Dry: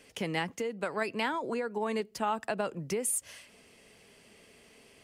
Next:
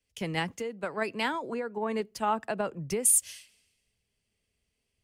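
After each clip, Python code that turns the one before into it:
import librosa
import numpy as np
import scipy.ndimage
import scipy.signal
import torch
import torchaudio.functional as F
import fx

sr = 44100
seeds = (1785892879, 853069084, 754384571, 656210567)

y = fx.low_shelf(x, sr, hz=120.0, db=5.5)
y = fx.band_widen(y, sr, depth_pct=100)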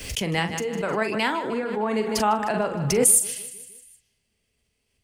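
y = fx.doubler(x, sr, ms=42.0, db=-9.0)
y = fx.echo_feedback(y, sr, ms=154, feedback_pct=56, wet_db=-15.0)
y = fx.pre_swell(y, sr, db_per_s=39.0)
y = F.gain(torch.from_numpy(y), 5.0).numpy()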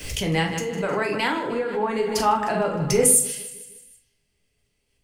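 y = fx.room_shoebox(x, sr, seeds[0], volume_m3=38.0, walls='mixed', distance_m=0.44)
y = F.gain(torch.from_numpy(y), -1.0).numpy()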